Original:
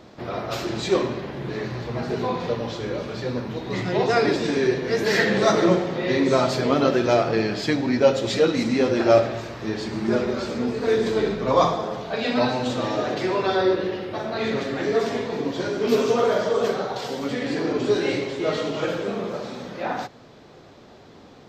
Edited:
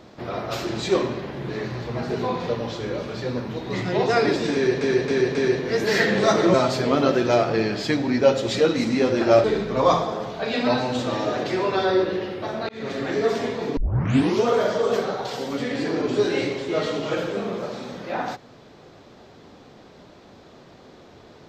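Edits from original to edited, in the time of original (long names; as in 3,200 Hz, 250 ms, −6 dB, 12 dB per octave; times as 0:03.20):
0:04.54–0:04.81: repeat, 4 plays
0:05.73–0:06.33: remove
0:09.23–0:11.15: remove
0:14.40–0:14.69: fade in
0:15.48: tape start 0.67 s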